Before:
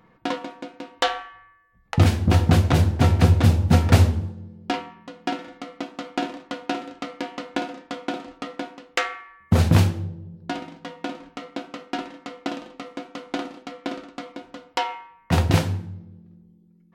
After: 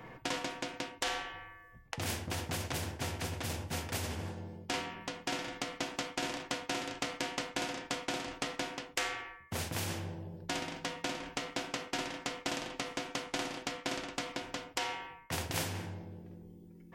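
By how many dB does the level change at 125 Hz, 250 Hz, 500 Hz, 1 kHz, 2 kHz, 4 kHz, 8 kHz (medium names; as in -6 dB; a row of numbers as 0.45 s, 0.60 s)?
-22.5 dB, -15.5 dB, -11.0 dB, -10.5 dB, -6.0 dB, -5.0 dB, -1.0 dB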